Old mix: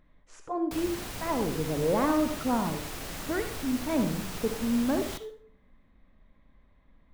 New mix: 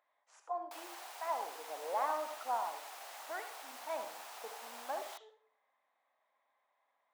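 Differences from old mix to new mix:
background: send off; master: add ladder high-pass 670 Hz, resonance 55%

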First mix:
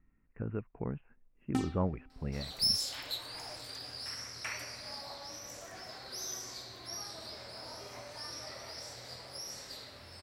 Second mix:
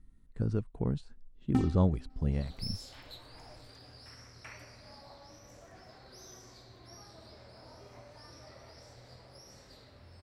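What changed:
speech: remove steep low-pass 2.7 kHz 96 dB/octave; second sound -7.0 dB; master: add tilt EQ -2.5 dB/octave

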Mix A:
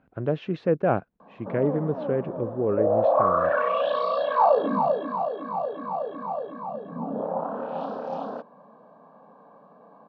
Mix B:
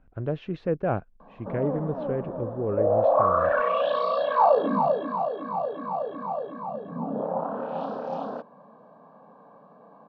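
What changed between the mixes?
speech -4.0 dB; master: remove high-pass 140 Hz 12 dB/octave

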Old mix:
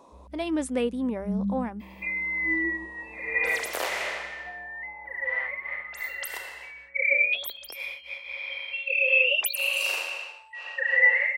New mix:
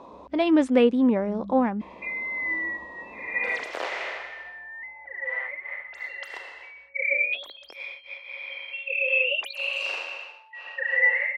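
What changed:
speech +8.5 dB; first sound -11.0 dB; master: add distance through air 150 m

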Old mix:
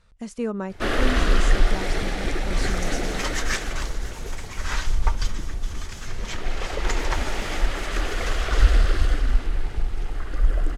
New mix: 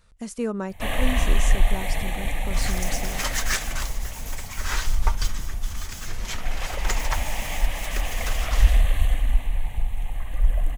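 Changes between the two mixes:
first sound: add static phaser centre 1.4 kHz, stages 6; master: remove distance through air 54 m

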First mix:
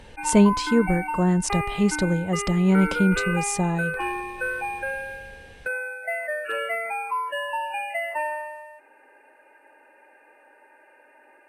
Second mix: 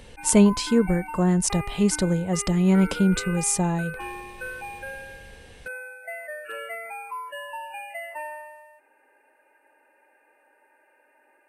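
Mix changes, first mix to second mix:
background -7.5 dB; master: add treble shelf 9 kHz +10.5 dB

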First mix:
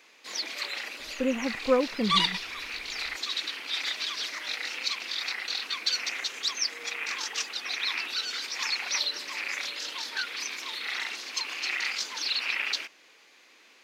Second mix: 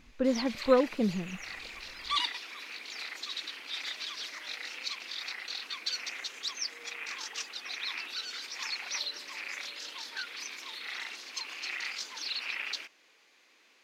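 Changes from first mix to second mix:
speech: entry -1.00 s; background -6.5 dB

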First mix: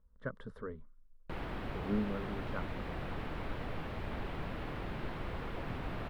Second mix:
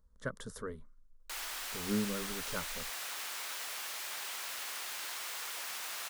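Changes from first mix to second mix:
background: add high-pass 1.1 kHz 12 dB/octave; master: remove distance through air 490 m

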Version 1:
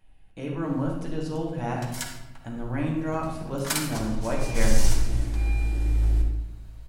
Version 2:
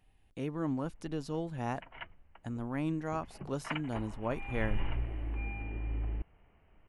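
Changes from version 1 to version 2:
background: add rippled Chebyshev low-pass 3 kHz, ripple 3 dB; reverb: off

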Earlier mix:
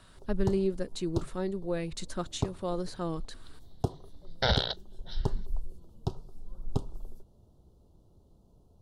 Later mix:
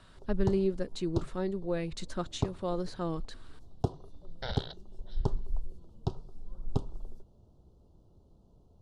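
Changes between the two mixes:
second sound -11.5 dB; master: add distance through air 53 m

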